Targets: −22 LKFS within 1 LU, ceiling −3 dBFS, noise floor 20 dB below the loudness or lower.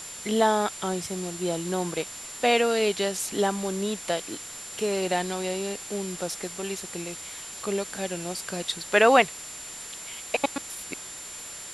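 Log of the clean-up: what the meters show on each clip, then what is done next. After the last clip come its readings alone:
interfering tone 7,200 Hz; level of the tone −40 dBFS; background noise floor −40 dBFS; target noise floor −48 dBFS; integrated loudness −27.5 LKFS; sample peak −5.5 dBFS; target loudness −22.0 LKFS
→ notch filter 7,200 Hz, Q 30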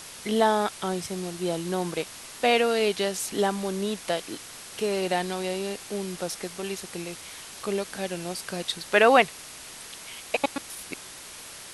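interfering tone none found; background noise floor −43 dBFS; target noise floor −47 dBFS
→ noise reduction from a noise print 6 dB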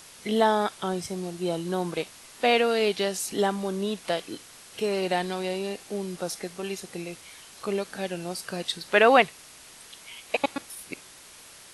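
background noise floor −49 dBFS; integrated loudness −27.0 LKFS; sample peak −5.0 dBFS; target loudness −22.0 LKFS
→ level +5 dB
brickwall limiter −3 dBFS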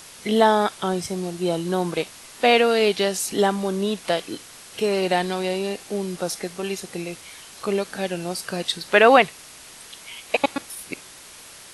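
integrated loudness −22.5 LKFS; sample peak −3.0 dBFS; background noise floor −44 dBFS

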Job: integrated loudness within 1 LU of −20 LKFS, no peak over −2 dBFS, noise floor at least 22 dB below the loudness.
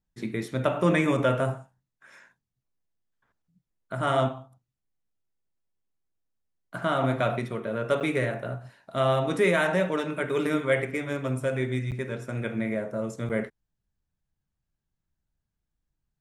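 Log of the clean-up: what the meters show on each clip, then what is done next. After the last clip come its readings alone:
number of dropouts 3; longest dropout 8.4 ms; integrated loudness −27.5 LKFS; sample peak −10.5 dBFS; target loudness −20.0 LKFS
→ repair the gap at 0:08.00/0:11.91/0:13.29, 8.4 ms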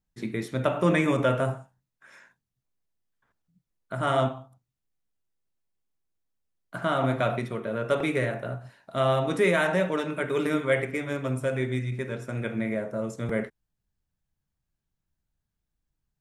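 number of dropouts 0; integrated loudness −27.5 LKFS; sample peak −10.5 dBFS; target loudness −20.0 LKFS
→ level +7.5 dB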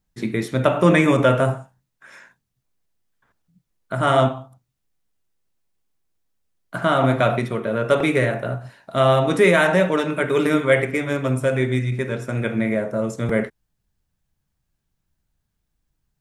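integrated loudness −20.0 LKFS; sample peak −3.0 dBFS; background noise floor −76 dBFS

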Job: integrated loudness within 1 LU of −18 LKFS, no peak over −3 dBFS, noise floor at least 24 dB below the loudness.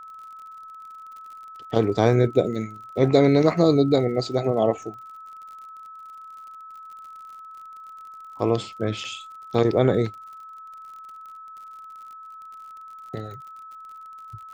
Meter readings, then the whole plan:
crackle rate 52 per second; interfering tone 1,300 Hz; level of the tone −39 dBFS; integrated loudness −22.0 LKFS; sample peak −3.5 dBFS; target loudness −18.0 LKFS
→ click removal
notch filter 1,300 Hz, Q 30
level +4 dB
brickwall limiter −3 dBFS

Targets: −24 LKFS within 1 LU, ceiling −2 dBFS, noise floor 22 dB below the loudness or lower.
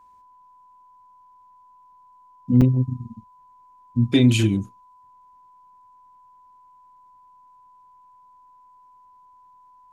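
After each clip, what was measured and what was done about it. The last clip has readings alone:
number of dropouts 1; longest dropout 6.1 ms; interfering tone 1,000 Hz; level of the tone −50 dBFS; integrated loudness −20.0 LKFS; sample peak −6.5 dBFS; target loudness −24.0 LKFS
→ repair the gap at 0:02.61, 6.1 ms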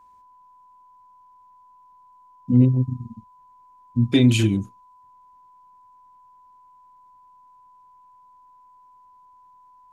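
number of dropouts 0; interfering tone 1,000 Hz; level of the tone −50 dBFS
→ notch filter 1,000 Hz, Q 30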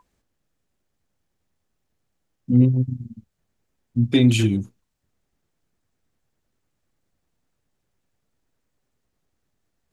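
interfering tone none found; integrated loudness −20.0 LKFS; sample peak −6.5 dBFS; target loudness −24.0 LKFS
→ level −4 dB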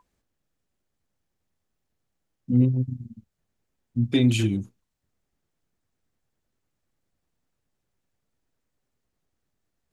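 integrated loudness −24.0 LKFS; sample peak −10.5 dBFS; background noise floor −80 dBFS

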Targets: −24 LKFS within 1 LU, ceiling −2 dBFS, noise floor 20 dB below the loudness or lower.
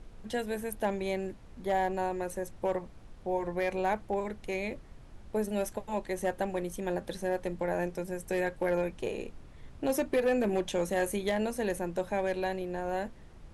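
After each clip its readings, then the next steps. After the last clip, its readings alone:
share of clipped samples 0.3%; peaks flattened at −21.0 dBFS; background noise floor −51 dBFS; target noise floor −53 dBFS; integrated loudness −33.0 LKFS; sample peak −21.0 dBFS; target loudness −24.0 LKFS
→ clipped peaks rebuilt −21 dBFS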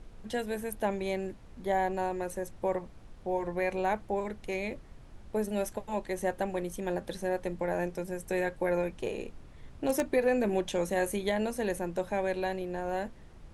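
share of clipped samples 0.0%; background noise floor −51 dBFS; target noise floor −53 dBFS
→ noise reduction from a noise print 6 dB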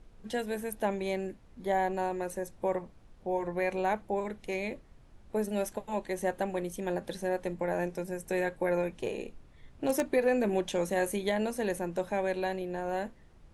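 background noise floor −57 dBFS; integrated loudness −33.0 LKFS; sample peak −12.0 dBFS; target loudness −24.0 LKFS
→ level +9 dB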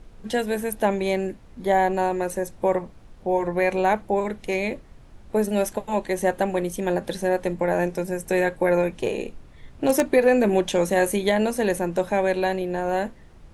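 integrated loudness −24.0 LKFS; sample peak −3.0 dBFS; background noise floor −48 dBFS

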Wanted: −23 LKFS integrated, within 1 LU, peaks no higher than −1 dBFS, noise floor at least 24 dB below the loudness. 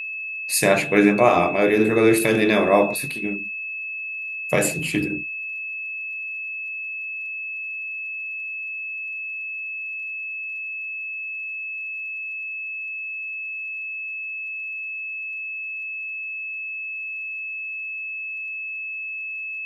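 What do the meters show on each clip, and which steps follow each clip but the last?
crackle rate 46 per second; interfering tone 2,600 Hz; level of the tone −28 dBFS; integrated loudness −24.0 LKFS; sample peak −1.5 dBFS; target loudness −23.0 LKFS
→ click removal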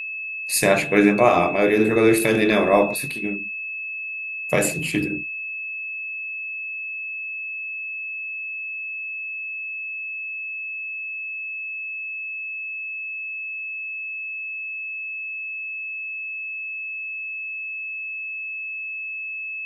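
crackle rate 0.20 per second; interfering tone 2,600 Hz; level of the tone −28 dBFS
→ notch filter 2,600 Hz, Q 30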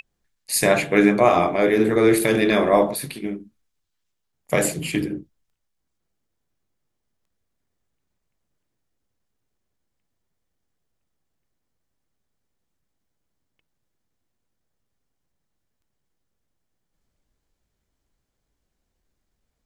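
interfering tone none found; integrated loudness −19.0 LKFS; sample peak −2.0 dBFS; target loudness −23.0 LKFS
→ level −4 dB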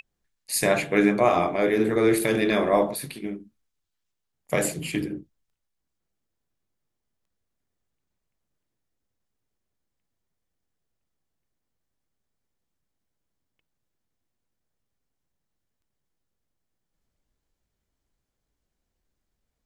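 integrated loudness −23.0 LKFS; sample peak −6.0 dBFS; background noise floor −81 dBFS

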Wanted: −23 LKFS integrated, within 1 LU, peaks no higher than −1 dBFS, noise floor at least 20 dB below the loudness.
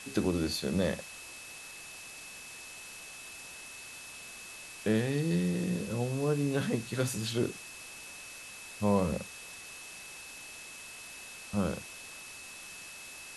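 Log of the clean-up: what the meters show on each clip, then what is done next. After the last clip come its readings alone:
interfering tone 2,600 Hz; level of the tone −48 dBFS; background noise floor −47 dBFS; target noise floor −56 dBFS; integrated loudness −35.5 LKFS; sample peak −15.0 dBFS; target loudness −23.0 LKFS
→ notch filter 2,600 Hz, Q 30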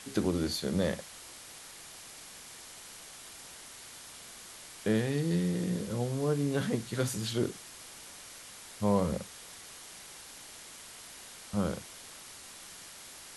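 interfering tone none found; background noise floor −49 dBFS; target noise floor −52 dBFS
→ noise reduction from a noise print 6 dB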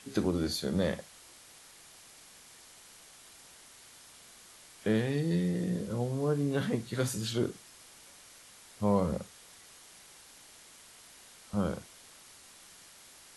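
background noise floor −55 dBFS; integrated loudness −32.0 LKFS; sample peak −15.0 dBFS; target loudness −23.0 LKFS
→ level +9 dB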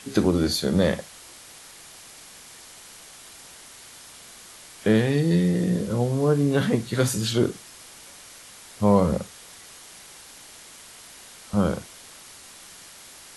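integrated loudness −23.0 LKFS; sample peak −6.0 dBFS; background noise floor −46 dBFS

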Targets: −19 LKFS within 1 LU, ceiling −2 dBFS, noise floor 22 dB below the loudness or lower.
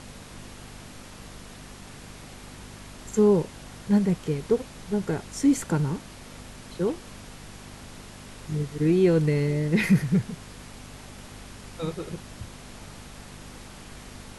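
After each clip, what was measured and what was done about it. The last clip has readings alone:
mains hum 50 Hz; hum harmonics up to 250 Hz; level of the hum −41 dBFS; background noise floor −45 dBFS; target noise floor −48 dBFS; integrated loudness −25.5 LKFS; sample peak −9.5 dBFS; target loudness −19.0 LKFS
→ hum removal 50 Hz, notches 5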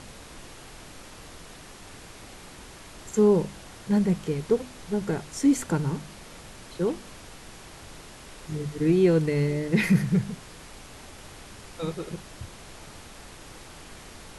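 mains hum none found; background noise floor −46 dBFS; target noise floor −48 dBFS
→ noise reduction from a noise print 6 dB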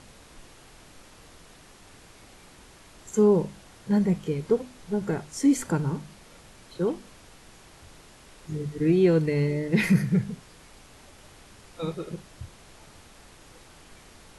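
background noise floor −52 dBFS; integrated loudness −25.5 LKFS; sample peak −10.0 dBFS; target loudness −19.0 LKFS
→ level +6.5 dB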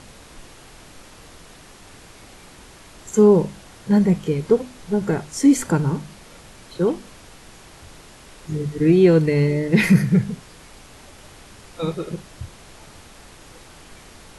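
integrated loudness −19.0 LKFS; sample peak −3.5 dBFS; background noise floor −46 dBFS

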